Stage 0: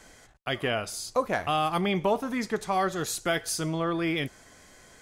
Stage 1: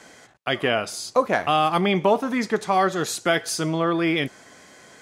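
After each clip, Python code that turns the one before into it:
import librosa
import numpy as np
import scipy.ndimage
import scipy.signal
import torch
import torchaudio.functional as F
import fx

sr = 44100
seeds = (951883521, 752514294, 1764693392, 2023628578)

y = scipy.signal.sosfilt(scipy.signal.butter(2, 150.0, 'highpass', fs=sr, output='sos'), x)
y = fx.high_shelf(y, sr, hz=9800.0, db=-10.5)
y = F.gain(torch.from_numpy(y), 6.5).numpy()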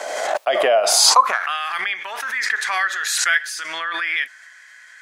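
y = fx.filter_sweep_highpass(x, sr, from_hz=620.0, to_hz=1700.0, start_s=0.8, end_s=1.59, q=5.4)
y = fx.pre_swell(y, sr, db_per_s=29.0)
y = F.gain(torch.from_numpy(y), -3.5).numpy()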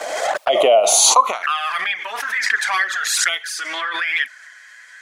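y = fx.env_flanger(x, sr, rest_ms=11.7, full_db=-15.0)
y = F.gain(torch.from_numpy(y), 5.0).numpy()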